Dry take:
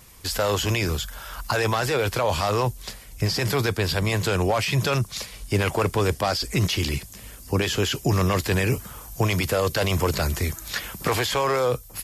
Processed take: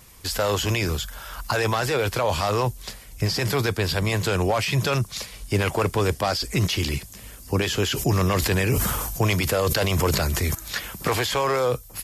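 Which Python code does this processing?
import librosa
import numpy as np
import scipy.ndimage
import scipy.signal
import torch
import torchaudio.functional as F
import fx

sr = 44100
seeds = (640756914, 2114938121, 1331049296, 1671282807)

y = fx.sustainer(x, sr, db_per_s=28.0, at=(7.85, 10.55))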